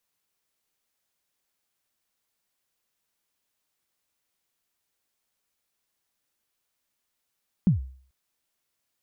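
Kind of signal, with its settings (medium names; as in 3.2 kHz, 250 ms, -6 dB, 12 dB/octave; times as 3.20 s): kick drum length 0.44 s, from 210 Hz, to 65 Hz, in 128 ms, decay 0.49 s, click off, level -13 dB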